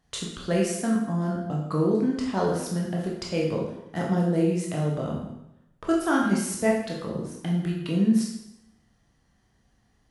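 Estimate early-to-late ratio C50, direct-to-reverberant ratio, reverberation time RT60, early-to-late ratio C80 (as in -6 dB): 3.0 dB, -3.0 dB, 0.85 s, 6.0 dB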